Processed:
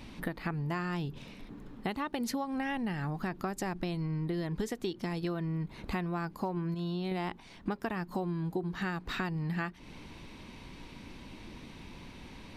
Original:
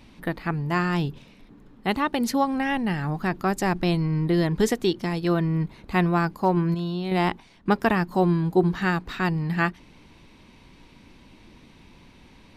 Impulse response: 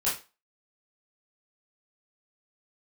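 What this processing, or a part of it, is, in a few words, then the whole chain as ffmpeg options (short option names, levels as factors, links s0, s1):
serial compression, peaks first: -af "acompressor=threshold=0.0316:ratio=6,acompressor=threshold=0.00891:ratio=1.5,volume=1.41"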